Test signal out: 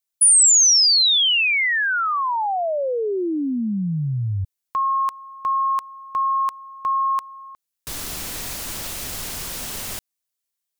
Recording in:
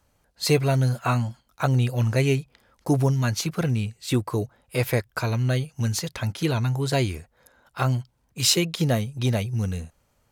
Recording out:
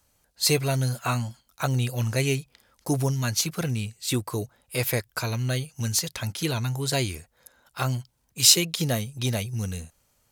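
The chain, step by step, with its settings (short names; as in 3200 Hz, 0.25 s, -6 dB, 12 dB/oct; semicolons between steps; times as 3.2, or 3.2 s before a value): high shelf 3300 Hz +11.5 dB; gain -4 dB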